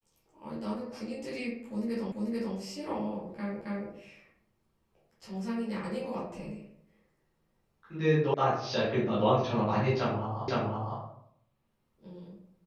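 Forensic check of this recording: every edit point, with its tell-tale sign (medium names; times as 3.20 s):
2.12 s: repeat of the last 0.44 s
3.61 s: repeat of the last 0.27 s
8.34 s: sound stops dead
10.48 s: repeat of the last 0.51 s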